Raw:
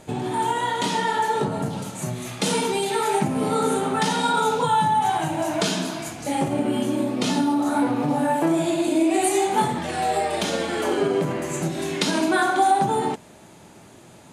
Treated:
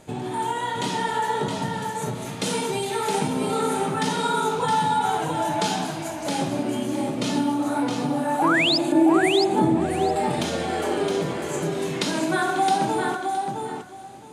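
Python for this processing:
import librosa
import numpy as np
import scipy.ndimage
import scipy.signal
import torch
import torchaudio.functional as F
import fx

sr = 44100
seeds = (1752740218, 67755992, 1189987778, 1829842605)

y = fx.spec_paint(x, sr, seeds[0], shape='rise', start_s=8.39, length_s=0.39, low_hz=720.0, high_hz=5400.0, level_db=-18.0)
y = fx.tilt_shelf(y, sr, db=8.0, hz=810.0, at=(8.92, 10.16))
y = fx.echo_feedback(y, sr, ms=666, feedback_pct=17, wet_db=-5.0)
y = y * librosa.db_to_amplitude(-3.0)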